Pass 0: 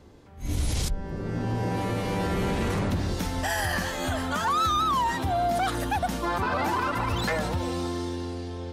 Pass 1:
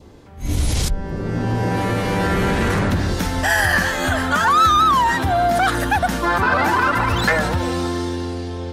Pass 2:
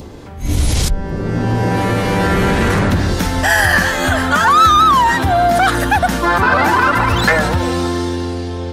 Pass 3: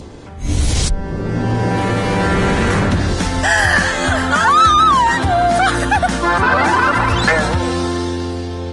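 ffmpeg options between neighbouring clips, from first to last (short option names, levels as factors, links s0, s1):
-af "adynamicequalizer=threshold=0.00631:dfrequency=1600:dqfactor=2.3:tfrequency=1600:tqfactor=2.3:attack=5:release=100:ratio=0.375:range=3.5:mode=boostabove:tftype=bell,volume=2.37"
-af "acompressor=mode=upward:threshold=0.0316:ratio=2.5,volume=1.68"
-af "volume=0.891" -ar 22050 -c:a libvorbis -b:a 32k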